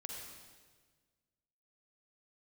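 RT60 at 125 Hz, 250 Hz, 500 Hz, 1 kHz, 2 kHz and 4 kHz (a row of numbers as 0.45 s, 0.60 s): 1.9 s, 1.7 s, 1.6 s, 1.4 s, 1.4 s, 1.4 s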